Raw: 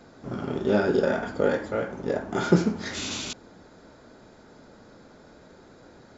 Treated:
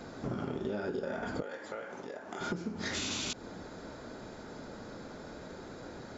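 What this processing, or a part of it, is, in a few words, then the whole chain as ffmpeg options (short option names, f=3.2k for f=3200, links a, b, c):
serial compression, peaks first: -filter_complex "[0:a]acompressor=threshold=-32dB:ratio=5,acompressor=threshold=-39dB:ratio=3,asettb=1/sr,asplit=3[a][b][c];[a]atrim=end=1.424[d];[b]atrim=start=1.42:end=2.41,asetpts=PTS-STARTPTS,afade=t=in:d=0.004:c=qsin,afade=t=out:st=0.986:d=0.004:c=qsin,highpass=f=810:p=1[e];[c]atrim=start=2.406[f];[d][e]acrossfade=d=0.004:c1=hsin:c2=qsin[g];[g][f]acrossfade=d=0.004:c1=qsin:c2=hsin,volume=5dB"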